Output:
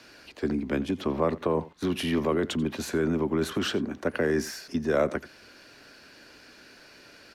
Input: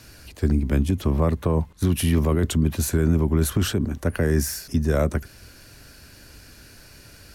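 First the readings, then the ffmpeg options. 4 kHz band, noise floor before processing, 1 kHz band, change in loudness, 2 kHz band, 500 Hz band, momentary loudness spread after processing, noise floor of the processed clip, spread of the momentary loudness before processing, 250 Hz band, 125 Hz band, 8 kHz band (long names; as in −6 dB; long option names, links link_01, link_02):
−1.5 dB, −48 dBFS, 0.0 dB, −5.5 dB, 0.0 dB, −0.5 dB, 5 LU, −53 dBFS, 4 LU, −4.5 dB, −14.5 dB, −10.5 dB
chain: -filter_complex "[0:a]acrossover=split=220 5300:gain=0.0794 1 0.141[link_01][link_02][link_03];[link_01][link_02][link_03]amix=inputs=3:normalize=0,asplit=2[link_04][link_05];[link_05]adelay=87.46,volume=-19dB,highshelf=frequency=4000:gain=-1.97[link_06];[link_04][link_06]amix=inputs=2:normalize=0"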